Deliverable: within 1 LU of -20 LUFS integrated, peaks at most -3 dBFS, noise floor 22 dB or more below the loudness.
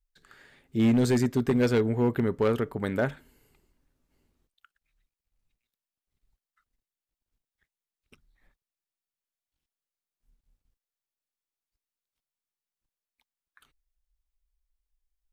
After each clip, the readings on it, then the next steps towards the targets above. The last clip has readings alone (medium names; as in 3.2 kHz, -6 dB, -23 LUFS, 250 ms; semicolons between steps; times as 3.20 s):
clipped samples 0.5%; clipping level -17.5 dBFS; loudness -26.0 LUFS; peak level -17.5 dBFS; loudness target -20.0 LUFS
-> clip repair -17.5 dBFS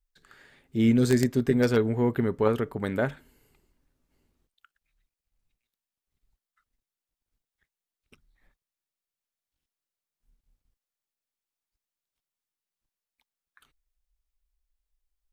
clipped samples 0.0%; loudness -25.0 LUFS; peak level -8.5 dBFS; loudness target -20.0 LUFS
-> trim +5 dB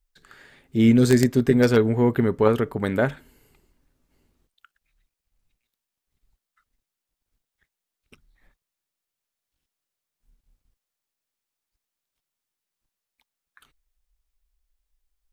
loudness -20.0 LUFS; peak level -3.5 dBFS; noise floor -86 dBFS